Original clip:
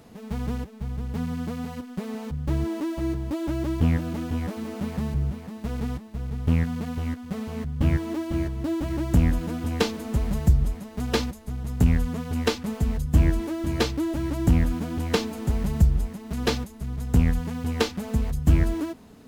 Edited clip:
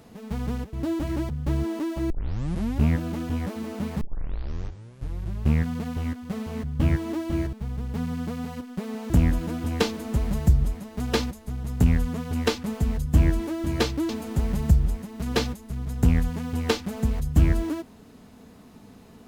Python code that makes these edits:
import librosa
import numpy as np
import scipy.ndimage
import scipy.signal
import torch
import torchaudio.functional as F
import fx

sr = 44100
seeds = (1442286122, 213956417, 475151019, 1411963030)

y = fx.edit(x, sr, fx.swap(start_s=0.73, length_s=1.57, other_s=8.54, other_length_s=0.56),
    fx.tape_start(start_s=3.11, length_s=0.8),
    fx.tape_start(start_s=5.02, length_s=1.62),
    fx.cut(start_s=14.09, length_s=1.11), tone=tone)